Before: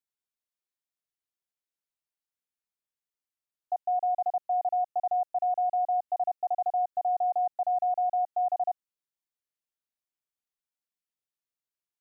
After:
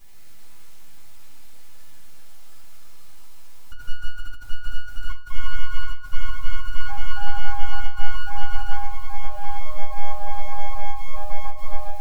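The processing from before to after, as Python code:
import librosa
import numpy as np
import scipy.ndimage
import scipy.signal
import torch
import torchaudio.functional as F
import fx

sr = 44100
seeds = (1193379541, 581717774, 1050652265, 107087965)

p1 = x + 0.5 * 10.0 ** (-39.5 / 20.0) * np.sign(x)
p2 = fx.filter_sweep_highpass(p1, sr, from_hz=940.0, to_hz=420.0, start_s=1.52, end_s=4.0, q=6.5)
p3 = np.abs(p2)
p4 = p3 + fx.echo_feedback(p3, sr, ms=802, feedback_pct=35, wet_db=-17.0, dry=0)
p5 = fx.echo_pitch(p4, sr, ms=129, semitones=-5, count=3, db_per_echo=-3.0)
p6 = fx.room_shoebox(p5, sr, seeds[0], volume_m3=240.0, walls='furnished', distance_m=3.9)
p7 = fx.end_taper(p6, sr, db_per_s=160.0)
y = F.gain(torch.from_numpy(p7), -11.5).numpy()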